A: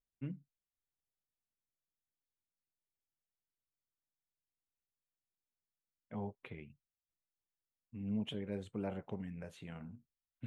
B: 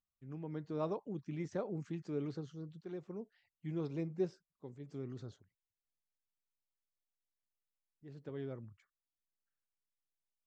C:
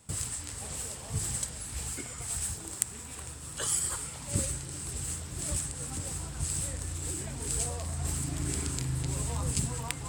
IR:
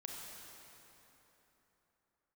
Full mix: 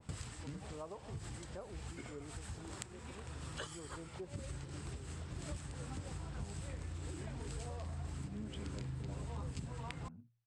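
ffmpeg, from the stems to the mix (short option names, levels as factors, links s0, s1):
-filter_complex "[0:a]bandreject=f=58.59:t=h:w=4,bandreject=f=117.18:t=h:w=4,adelay=250,volume=0.944[s0];[1:a]lowpass=1100,tiltshelf=f=650:g=-9,volume=0.531,asplit=2[s1][s2];[2:a]adynamicequalizer=threshold=0.00282:dfrequency=1900:dqfactor=0.7:tfrequency=1900:tqfactor=0.7:attack=5:release=100:ratio=0.375:range=1.5:mode=cutabove:tftype=highshelf,volume=1.26[s3];[s2]apad=whole_len=444731[s4];[s3][s4]sidechaincompress=threshold=0.00126:ratio=4:attack=16:release=254[s5];[s0][s1][s5]amix=inputs=3:normalize=0,lowpass=4200,acompressor=threshold=0.00794:ratio=4"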